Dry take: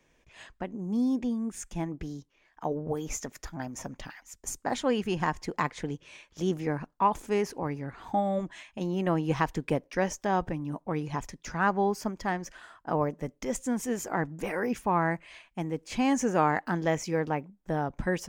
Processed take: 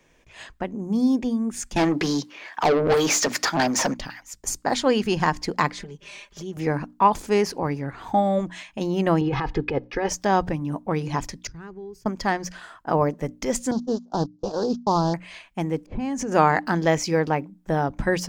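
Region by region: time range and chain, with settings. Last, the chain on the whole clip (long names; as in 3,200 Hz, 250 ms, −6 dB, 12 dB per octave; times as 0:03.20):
0:01.76–0:03.94: high-pass filter 130 Hz 24 dB per octave + mains-hum notches 60/120/180/240/300 Hz + mid-hump overdrive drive 26 dB, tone 3,900 Hz, clips at −18 dBFS
0:05.72–0:06.57: downward compressor 3 to 1, threshold −46 dBFS + comb filter 5 ms, depth 78%
0:09.21–0:10.09: comb filter 2.4 ms, depth 63% + compressor whose output falls as the input rises −29 dBFS + high-frequency loss of the air 260 metres
0:11.47–0:12.06: downward expander −39 dBFS + drawn EQ curve 120 Hz 0 dB, 240 Hz −22 dB, 390 Hz −10 dB, 600 Hz −29 dB, 3,900 Hz −18 dB + downward compressor 3 to 1, threshold −42 dBFS
0:13.71–0:15.14: variable-slope delta modulation 32 kbit/s + noise gate −34 dBFS, range −32 dB + Butterworth band-reject 2,100 Hz, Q 0.67
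0:15.86–0:16.32: low-pass that shuts in the quiet parts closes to 350 Hz, open at −22.5 dBFS + low-shelf EQ 470 Hz +8.5 dB + downward compressor 16 to 1, threshold −30 dBFS
whole clip: dynamic equaliser 4,600 Hz, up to +8 dB, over −60 dBFS, Q 2.8; mains-hum notches 60/120/180/240/300 Hz; level +7 dB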